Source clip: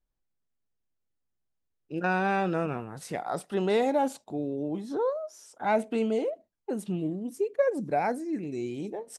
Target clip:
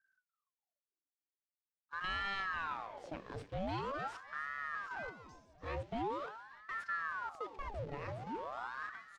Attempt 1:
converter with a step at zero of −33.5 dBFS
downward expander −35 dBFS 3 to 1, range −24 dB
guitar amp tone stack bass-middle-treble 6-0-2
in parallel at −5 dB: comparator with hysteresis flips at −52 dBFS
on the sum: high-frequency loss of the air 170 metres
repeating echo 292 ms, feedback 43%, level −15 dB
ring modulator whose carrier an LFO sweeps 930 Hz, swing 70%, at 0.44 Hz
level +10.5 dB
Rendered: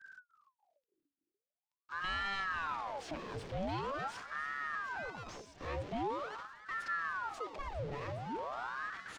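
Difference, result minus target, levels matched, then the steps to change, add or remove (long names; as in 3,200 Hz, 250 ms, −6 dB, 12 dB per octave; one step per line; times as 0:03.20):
converter with a step at zero: distortion +9 dB
change: converter with a step at zero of −43.5 dBFS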